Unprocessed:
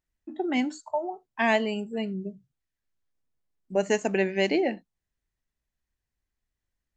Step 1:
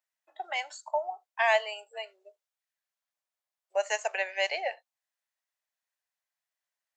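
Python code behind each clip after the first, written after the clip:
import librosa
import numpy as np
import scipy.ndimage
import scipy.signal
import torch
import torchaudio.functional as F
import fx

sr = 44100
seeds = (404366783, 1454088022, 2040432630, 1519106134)

y = scipy.signal.sosfilt(scipy.signal.butter(8, 570.0, 'highpass', fs=sr, output='sos'), x)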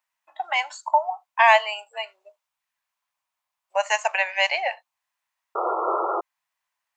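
y = fx.graphic_eq_15(x, sr, hz=(400, 1000, 2500), db=(-12, 12, 5))
y = fx.spec_paint(y, sr, seeds[0], shape='noise', start_s=5.55, length_s=0.66, low_hz=330.0, high_hz=1400.0, level_db=-29.0)
y = y * librosa.db_to_amplitude(4.5)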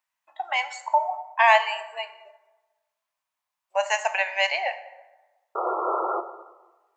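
y = fx.rev_plate(x, sr, seeds[1], rt60_s=1.2, hf_ratio=0.55, predelay_ms=0, drr_db=9.5)
y = y * librosa.db_to_amplitude(-2.0)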